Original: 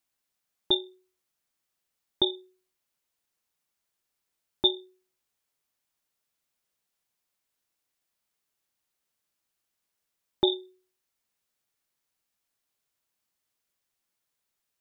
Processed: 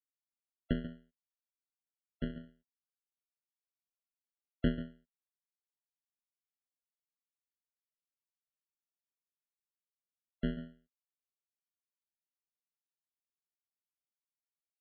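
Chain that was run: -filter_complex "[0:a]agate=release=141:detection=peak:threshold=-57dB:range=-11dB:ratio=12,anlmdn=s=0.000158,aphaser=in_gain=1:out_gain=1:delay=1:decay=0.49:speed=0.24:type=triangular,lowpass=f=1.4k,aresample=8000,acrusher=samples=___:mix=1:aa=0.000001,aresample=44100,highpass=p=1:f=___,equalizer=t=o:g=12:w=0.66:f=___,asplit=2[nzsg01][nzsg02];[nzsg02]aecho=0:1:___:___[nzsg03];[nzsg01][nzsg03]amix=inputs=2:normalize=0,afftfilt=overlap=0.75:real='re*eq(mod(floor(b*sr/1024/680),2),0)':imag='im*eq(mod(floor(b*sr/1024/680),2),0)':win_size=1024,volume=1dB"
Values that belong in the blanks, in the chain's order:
39, 150, 220, 139, 0.224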